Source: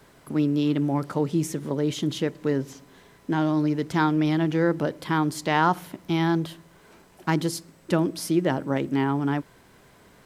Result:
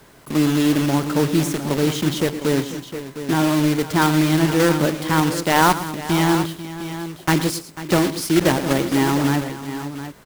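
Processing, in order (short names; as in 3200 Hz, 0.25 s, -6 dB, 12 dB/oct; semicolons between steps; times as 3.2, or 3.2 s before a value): block floating point 3-bit; tapped delay 0.112/0.493/0.709 s -14/-14.5/-11.5 dB; gain +5 dB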